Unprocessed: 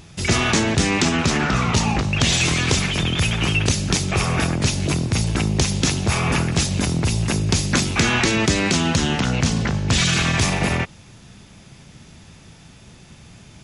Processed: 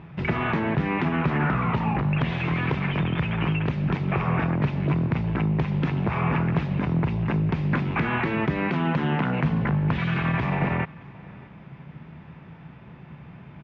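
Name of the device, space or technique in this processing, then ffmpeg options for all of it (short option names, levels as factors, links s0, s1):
bass amplifier: -filter_complex "[0:a]asettb=1/sr,asplit=3[s0][s1][s2];[s0]atrim=end=8.704[s3];[s1]atrim=start=8.7:end=9.45,asetpts=PTS-STARTPTS,afade=t=in:d=0.004:c=qsin,afade=t=out:st=0.746:d=0.004:c=qsin,highpass=150[s4];[s2]atrim=start=9.446[s5];[s3][s4]acrossfade=d=0.004:c1=hsin:c2=qsin[s6];[s6][s5]acrossfade=d=0.004:c1=qsin:c2=hsin,acompressor=threshold=0.0891:ratio=6,highpass=68,equalizer=f=96:t=q:w=4:g=-7,equalizer=f=150:t=q:w=4:g=8,equalizer=f=980:t=q:w=4:g=5,lowpass=f=2300:w=0.5412,lowpass=f=2300:w=1.3066,aecho=1:1:626:0.0708"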